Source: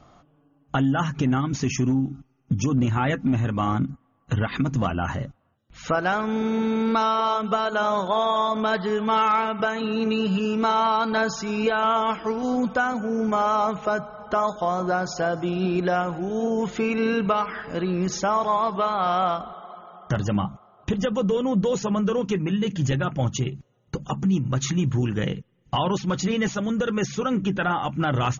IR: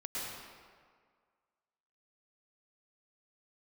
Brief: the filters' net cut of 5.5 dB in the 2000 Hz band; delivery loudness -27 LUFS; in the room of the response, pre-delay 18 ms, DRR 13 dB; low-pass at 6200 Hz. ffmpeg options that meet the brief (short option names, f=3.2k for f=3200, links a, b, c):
-filter_complex "[0:a]lowpass=6.2k,equalizer=f=2k:t=o:g=-8.5,asplit=2[a][b];[1:a]atrim=start_sample=2205,adelay=18[c];[b][c]afir=irnorm=-1:irlink=0,volume=-16dB[d];[a][d]amix=inputs=2:normalize=0,volume=-2dB"